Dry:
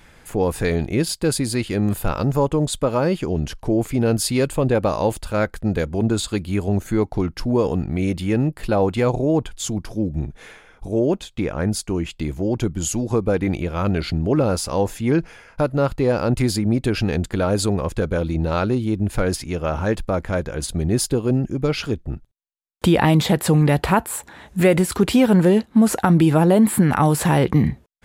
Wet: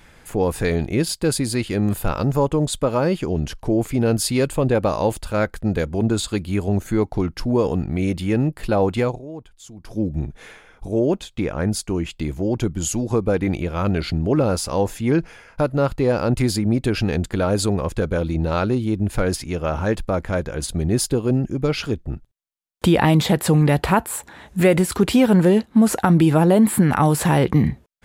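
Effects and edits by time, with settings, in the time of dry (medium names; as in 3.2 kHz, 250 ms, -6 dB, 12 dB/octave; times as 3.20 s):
9.00–9.98 s: dip -16 dB, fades 0.20 s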